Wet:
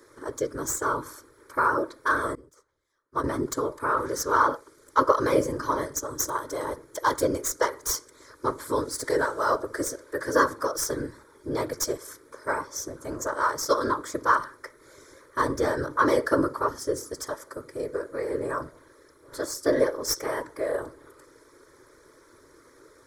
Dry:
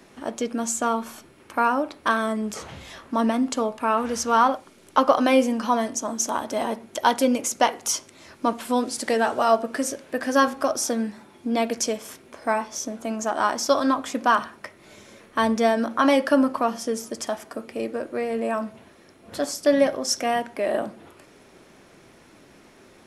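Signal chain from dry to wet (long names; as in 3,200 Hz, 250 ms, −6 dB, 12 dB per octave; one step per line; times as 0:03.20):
stylus tracing distortion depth 0.035 ms
low-shelf EQ 120 Hz −7 dB
random phases in short frames
phaser with its sweep stopped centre 740 Hz, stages 6
0:02.35–0:03.24: expander for the loud parts 2.5 to 1, over −43 dBFS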